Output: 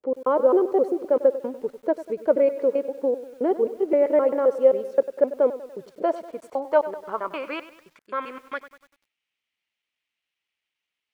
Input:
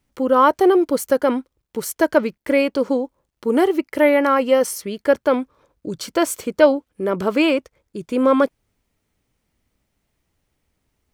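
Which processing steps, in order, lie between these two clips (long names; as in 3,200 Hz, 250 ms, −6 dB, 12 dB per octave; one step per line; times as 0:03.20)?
slices reordered back to front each 131 ms, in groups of 2
band-pass filter sweep 500 Hz → 2,800 Hz, 0:05.61–0:09.15
feedback echo at a low word length 97 ms, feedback 55%, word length 8 bits, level −14 dB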